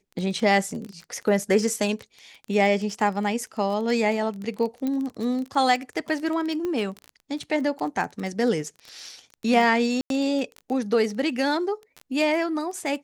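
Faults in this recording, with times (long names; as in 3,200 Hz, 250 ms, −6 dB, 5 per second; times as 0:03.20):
surface crackle 18 per second −29 dBFS
0:04.87: click −17 dBFS
0:06.65: click −18 dBFS
0:10.01–0:10.10: drop-out 92 ms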